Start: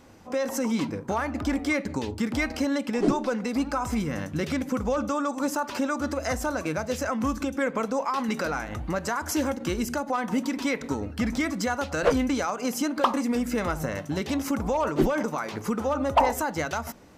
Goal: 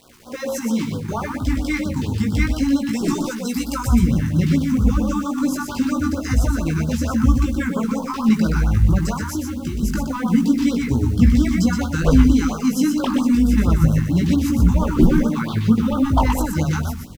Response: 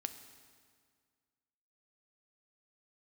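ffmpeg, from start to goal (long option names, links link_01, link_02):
-filter_complex "[0:a]asettb=1/sr,asplit=3[link_01][link_02][link_03];[link_01]atrim=end=2.894[link_04];[link_02]atrim=start=2.89:end=3.87,asetpts=PTS-STARTPTS,afade=type=in:duration=0.004:curve=qsin,afade=type=out:start_time=0.976:duration=0.004:curve=qsin,aemphasis=mode=production:type=bsi[link_05];[link_03]atrim=start=3.866[link_06];[link_04][link_05]acrossfade=duration=0.004:curve1=hsin:curve2=qsin[link_07];[link_07][link_06]acrossfade=duration=0.004:curve1=qsin:curve2=hsin,bandreject=frequency=50:width_type=h:width=6,bandreject=frequency=100:width_type=h:width=6,bandreject=frequency=150:width_type=h:width=6,bandreject=frequency=200:width_type=h:width=6,asubboost=boost=9.5:cutoff=170,asettb=1/sr,asplit=3[link_08][link_09][link_10];[link_08]atrim=end=9.204[link_11];[link_09]atrim=start=9.2:end=9.83,asetpts=PTS-STARTPTS,afade=type=in:duration=0.004:curve=qsin,afade=type=out:start_time=0.626:duration=0.004:curve=qsin,acompressor=threshold=-25dB:ratio=12[link_12];[link_10]atrim=start=9.826[link_13];[link_11][link_12]acrossfade=duration=0.004:curve1=hsin:curve2=qsin[link_14];[link_14][link_13]acrossfade=duration=0.004:curve1=qsin:curve2=hsin,asettb=1/sr,asplit=3[link_15][link_16][link_17];[link_15]atrim=end=15.294[link_18];[link_16]atrim=start=15.29:end=16.05,asetpts=PTS-STARTPTS,afade=type=in:duration=0.004:curve=qsin,afade=type=out:start_time=0.756:duration=0.004:curve=qsin,lowpass=frequency=3700:width_type=q:width=2.3[link_19];[link_17]atrim=start=16.046[link_20];[link_18][link_19]acrossfade=duration=0.004:curve1=hsin:curve2=qsin[link_21];[link_21][link_20]acrossfade=duration=0.004:curve1=qsin:curve2=hsin,acrusher=bits=7:mix=0:aa=0.000001,flanger=delay=16.5:depth=3.4:speed=0.27,aecho=1:1:122:0.562,afftfilt=real='re*(1-between(b*sr/1024,530*pow(2200/530,0.5+0.5*sin(2*PI*4.4*pts/sr))/1.41,530*pow(2200/530,0.5+0.5*sin(2*PI*4.4*pts/sr))*1.41))':imag='im*(1-between(b*sr/1024,530*pow(2200/530,0.5+0.5*sin(2*PI*4.4*pts/sr))/1.41,530*pow(2200/530,0.5+0.5*sin(2*PI*4.4*pts/sr))*1.41))':win_size=1024:overlap=0.75,volume=5.5dB"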